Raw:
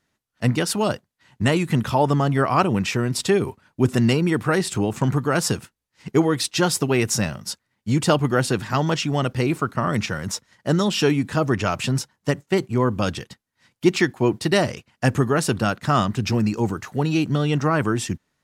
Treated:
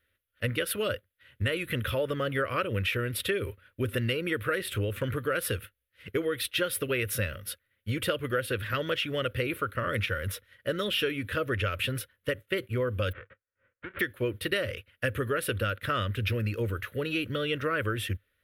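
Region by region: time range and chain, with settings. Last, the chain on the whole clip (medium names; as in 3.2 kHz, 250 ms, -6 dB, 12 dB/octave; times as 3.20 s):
13.11–13.99 s: formants flattened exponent 0.1 + low-pass 1.7 kHz 24 dB/octave + compression 10:1, threshold -28 dBFS
whole clip: FFT filter 100 Hz 0 dB, 150 Hz -19 dB, 380 Hz -10 dB, 540 Hz +1 dB, 780 Hz -29 dB, 1.4 kHz -2 dB, 3.4 kHz -1 dB, 4.8 kHz -17 dB, 7.2 kHz -23 dB, 11 kHz +2 dB; compression, threshold -27 dBFS; trim +2 dB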